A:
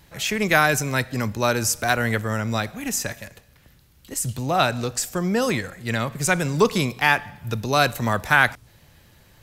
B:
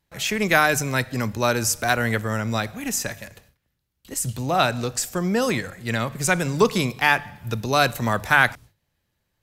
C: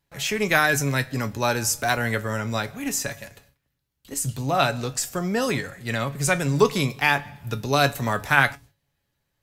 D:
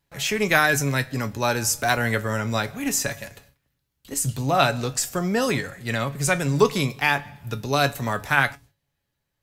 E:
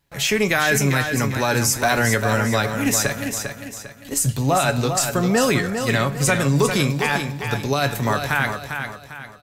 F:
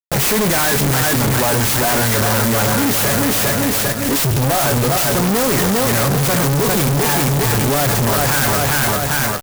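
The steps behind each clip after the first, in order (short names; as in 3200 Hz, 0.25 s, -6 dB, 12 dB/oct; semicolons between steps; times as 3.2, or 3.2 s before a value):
gate with hold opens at -40 dBFS; notches 50/100/150 Hz
resonator 140 Hz, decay 0.16 s, harmonics all, mix 70%; gain +4.5 dB
vocal rider within 3 dB 2 s
limiter -14 dBFS, peak gain reduction 11 dB; on a send: feedback echo 0.399 s, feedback 38%, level -7 dB; on the sum: gain +5 dB
fuzz box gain 44 dB, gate -51 dBFS; clock jitter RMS 0.093 ms; gain -1.5 dB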